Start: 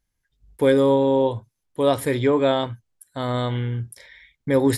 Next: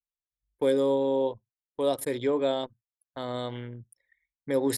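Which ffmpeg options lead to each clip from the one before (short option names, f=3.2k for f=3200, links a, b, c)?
-filter_complex "[0:a]highpass=f=560:p=1,anlmdn=10,acrossover=split=710|3800[a][b][c];[b]acompressor=threshold=-41dB:ratio=4[d];[a][d][c]amix=inputs=3:normalize=0,volume=-1.5dB"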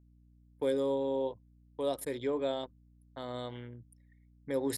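-af "aeval=exprs='val(0)+0.002*(sin(2*PI*60*n/s)+sin(2*PI*2*60*n/s)/2+sin(2*PI*3*60*n/s)/3+sin(2*PI*4*60*n/s)/4+sin(2*PI*5*60*n/s)/5)':c=same,volume=-6.5dB"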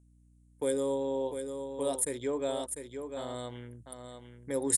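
-af "aexciter=amount=9.6:drive=4.3:freq=6.8k,aecho=1:1:698:0.422,aresample=22050,aresample=44100"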